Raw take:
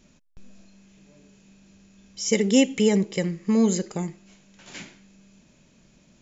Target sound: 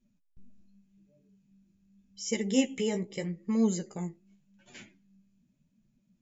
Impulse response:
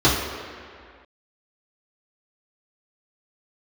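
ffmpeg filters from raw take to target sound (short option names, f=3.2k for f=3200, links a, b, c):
-af "afftdn=nr=17:nf=-47,flanger=delay=8.2:depth=9.3:regen=22:speed=0.84:shape=sinusoidal,volume=-5dB"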